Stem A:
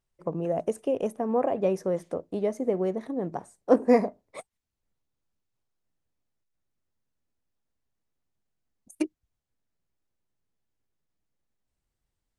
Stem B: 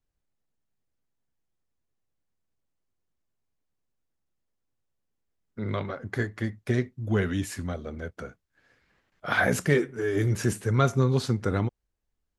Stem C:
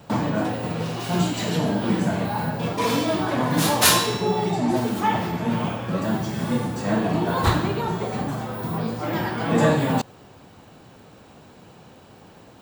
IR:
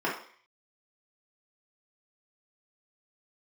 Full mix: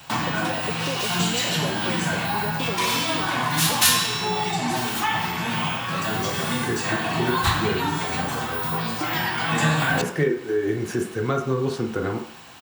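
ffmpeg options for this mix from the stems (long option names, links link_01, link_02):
-filter_complex "[0:a]acompressor=threshold=-25dB:ratio=6,volume=-1dB[link_01];[1:a]adelay=500,volume=-2.5dB,asplit=2[link_02][link_03];[link_03]volume=-8dB[link_04];[2:a]firequalizer=gain_entry='entry(140,0);entry(380,-12);entry(870,2);entry(2700,12)':delay=0.05:min_phase=1,volume=-2dB,asplit=2[link_05][link_06];[link_06]volume=-11dB[link_07];[3:a]atrim=start_sample=2205[link_08];[link_04][link_07]amix=inputs=2:normalize=0[link_09];[link_09][link_08]afir=irnorm=-1:irlink=0[link_10];[link_01][link_02][link_05][link_10]amix=inputs=4:normalize=0,acrossover=split=230[link_11][link_12];[link_12]acompressor=threshold=-24dB:ratio=2[link_13];[link_11][link_13]amix=inputs=2:normalize=0"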